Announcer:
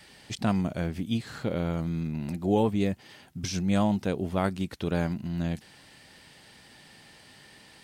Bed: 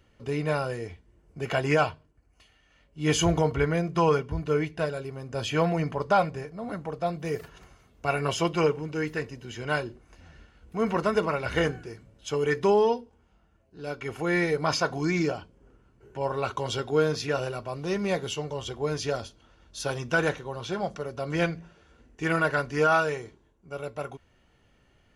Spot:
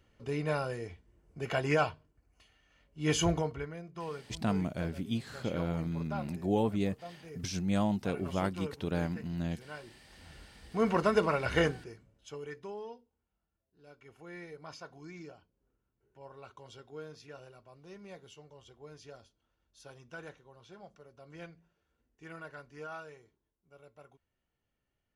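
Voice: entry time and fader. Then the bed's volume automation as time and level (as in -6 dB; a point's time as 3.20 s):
4.00 s, -5.0 dB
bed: 3.30 s -5 dB
3.74 s -18 dB
9.79 s -18 dB
10.32 s -2 dB
11.61 s -2 dB
12.69 s -21.5 dB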